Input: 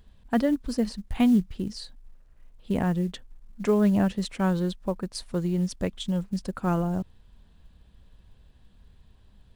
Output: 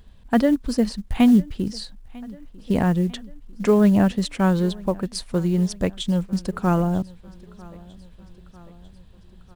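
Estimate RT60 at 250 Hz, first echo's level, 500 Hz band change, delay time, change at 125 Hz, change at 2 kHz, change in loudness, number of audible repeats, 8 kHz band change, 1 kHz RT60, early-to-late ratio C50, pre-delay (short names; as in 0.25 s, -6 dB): none, -23.0 dB, +5.5 dB, 0.947 s, +5.5 dB, +5.5 dB, +5.5 dB, 3, +5.5 dB, none, none, none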